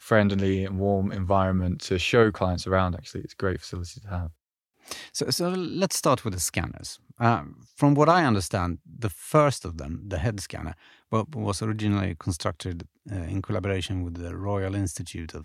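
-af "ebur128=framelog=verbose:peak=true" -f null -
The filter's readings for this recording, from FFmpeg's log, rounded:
Integrated loudness:
  I:         -26.2 LUFS
  Threshold: -36.6 LUFS
Loudness range:
  LRA:         5.8 LU
  Threshold: -46.8 LUFS
  LRA low:   -30.0 LUFS
  LRA high:  -24.2 LUFS
True peak:
  Peak:       -4.5 dBFS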